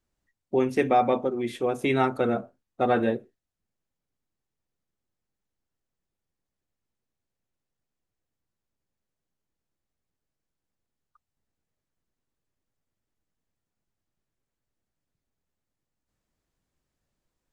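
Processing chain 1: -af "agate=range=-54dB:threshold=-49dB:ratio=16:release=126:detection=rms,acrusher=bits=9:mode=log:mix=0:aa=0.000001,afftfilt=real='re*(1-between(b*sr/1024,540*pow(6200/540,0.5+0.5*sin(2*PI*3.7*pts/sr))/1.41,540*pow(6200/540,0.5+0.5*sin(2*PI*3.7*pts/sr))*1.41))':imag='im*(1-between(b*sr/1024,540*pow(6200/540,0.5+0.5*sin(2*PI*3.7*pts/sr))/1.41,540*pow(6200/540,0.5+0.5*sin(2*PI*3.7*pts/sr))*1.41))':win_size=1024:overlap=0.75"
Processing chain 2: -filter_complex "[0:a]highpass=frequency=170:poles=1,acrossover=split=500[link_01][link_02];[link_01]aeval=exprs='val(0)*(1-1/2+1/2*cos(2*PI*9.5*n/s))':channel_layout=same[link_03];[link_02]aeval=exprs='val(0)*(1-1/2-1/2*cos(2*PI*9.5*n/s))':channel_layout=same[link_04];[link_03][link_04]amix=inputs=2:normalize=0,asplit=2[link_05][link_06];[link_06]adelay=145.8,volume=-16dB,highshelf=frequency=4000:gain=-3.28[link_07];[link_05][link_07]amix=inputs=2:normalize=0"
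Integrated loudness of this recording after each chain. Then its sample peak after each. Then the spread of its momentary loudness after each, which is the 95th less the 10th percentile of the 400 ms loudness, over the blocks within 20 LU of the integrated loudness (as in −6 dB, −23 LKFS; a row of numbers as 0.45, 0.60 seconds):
−26.5, −31.5 LKFS; −10.5, −12.5 dBFS; 6, 9 LU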